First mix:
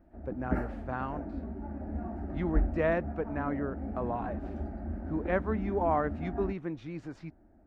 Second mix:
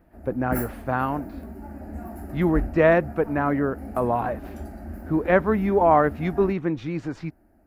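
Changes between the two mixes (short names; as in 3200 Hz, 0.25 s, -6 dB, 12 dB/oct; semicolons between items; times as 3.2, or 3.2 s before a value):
speech +11.0 dB; background: remove tape spacing loss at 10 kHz 35 dB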